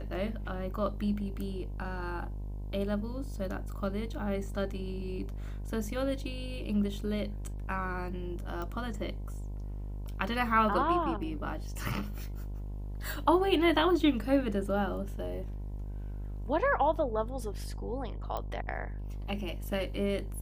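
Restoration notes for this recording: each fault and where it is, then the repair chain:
mains buzz 50 Hz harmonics 21 −38 dBFS
0:08.62: click −25 dBFS
0:18.37: click −22 dBFS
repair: click removal
hum removal 50 Hz, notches 21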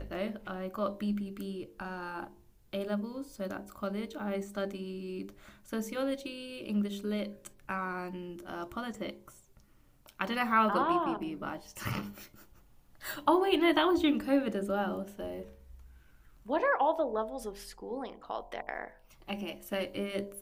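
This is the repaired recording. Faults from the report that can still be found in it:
none of them is left

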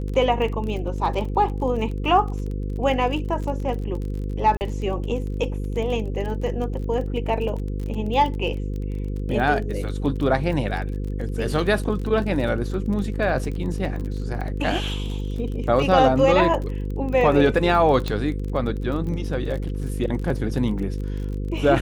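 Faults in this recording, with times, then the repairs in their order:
mains buzz 50 Hz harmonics 10 −27 dBFS
surface crackle 29 per second −30 dBFS
0:04.57–0:04.61: drop-out 39 ms
0:18.08: click −13 dBFS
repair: click removal
hum removal 50 Hz, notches 10
repair the gap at 0:04.57, 39 ms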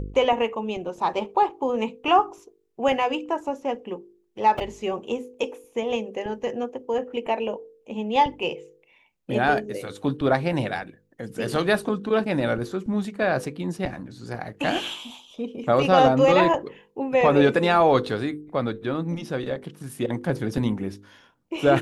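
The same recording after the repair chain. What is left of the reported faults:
none of them is left

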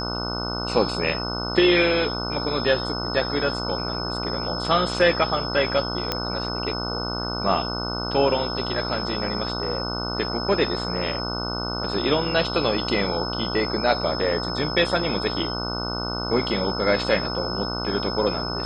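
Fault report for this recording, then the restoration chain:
mains buzz 60 Hz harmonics 25 −30 dBFS
whistle 5,200 Hz −30 dBFS
0:06.12: click −8 dBFS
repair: click removal
notch filter 5,200 Hz, Q 30
hum removal 60 Hz, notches 25

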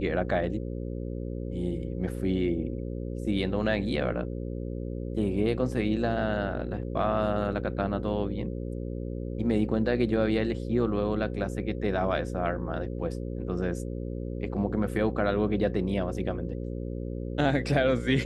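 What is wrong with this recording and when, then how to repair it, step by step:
mains buzz 60 Hz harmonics 9 −34 dBFS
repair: hum removal 60 Hz, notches 9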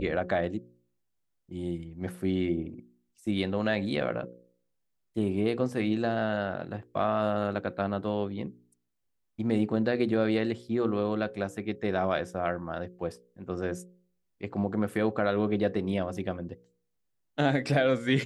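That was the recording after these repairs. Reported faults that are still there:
none of them is left

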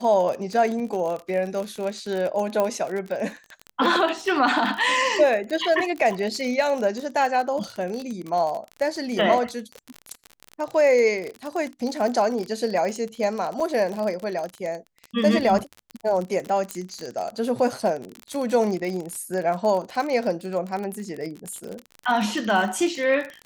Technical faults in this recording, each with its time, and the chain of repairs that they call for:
surface crackle 39 per second −27 dBFS
0:02.60: click −11 dBFS
0:13.60: drop-out 4.1 ms
0:16.71: click −12 dBFS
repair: click removal
repair the gap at 0:13.60, 4.1 ms

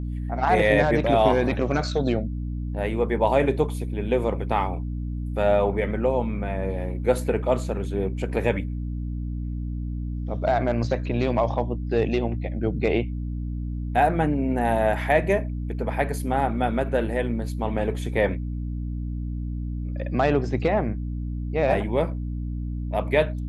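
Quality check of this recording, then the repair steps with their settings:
mains hum 60 Hz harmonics 5 −29 dBFS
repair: hum removal 60 Hz, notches 5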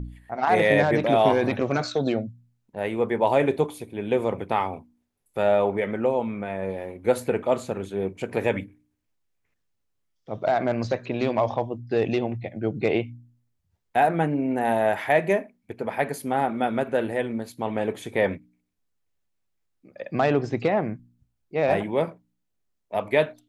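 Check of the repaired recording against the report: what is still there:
none of them is left

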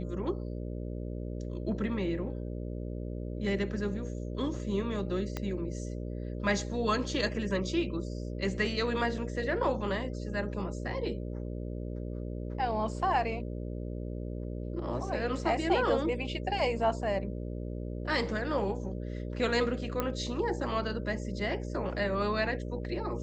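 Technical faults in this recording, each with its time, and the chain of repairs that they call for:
mains buzz 60 Hz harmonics 10 −37 dBFS
0:05.37: click −19 dBFS
0:20.00: click −16 dBFS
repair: click removal
hum removal 60 Hz, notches 10

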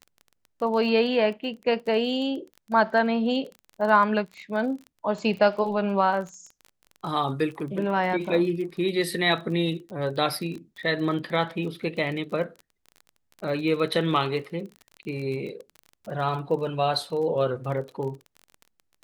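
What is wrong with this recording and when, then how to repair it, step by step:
surface crackle 26 per second −34 dBFS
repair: click removal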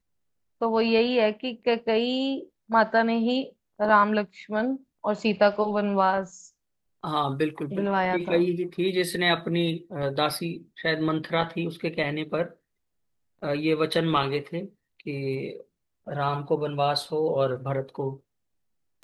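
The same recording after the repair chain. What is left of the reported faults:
none of them is left

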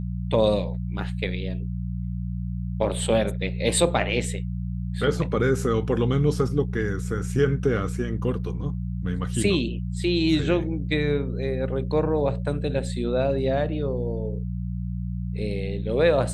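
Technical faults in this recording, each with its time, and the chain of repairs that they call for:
mains hum 60 Hz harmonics 3 −29 dBFS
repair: hum removal 60 Hz, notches 3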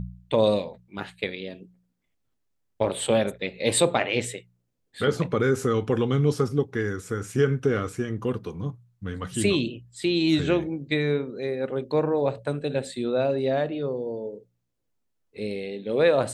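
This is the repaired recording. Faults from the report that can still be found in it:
none of them is left

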